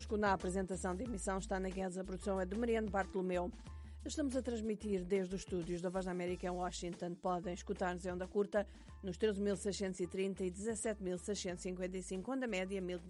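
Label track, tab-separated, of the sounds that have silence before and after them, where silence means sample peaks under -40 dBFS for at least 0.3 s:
4.060000	8.620000	sound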